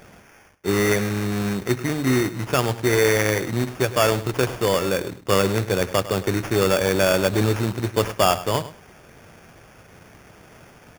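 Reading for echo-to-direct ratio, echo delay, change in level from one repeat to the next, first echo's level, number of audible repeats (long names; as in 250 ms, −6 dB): −15.0 dB, 103 ms, −15.0 dB, −15.0 dB, 2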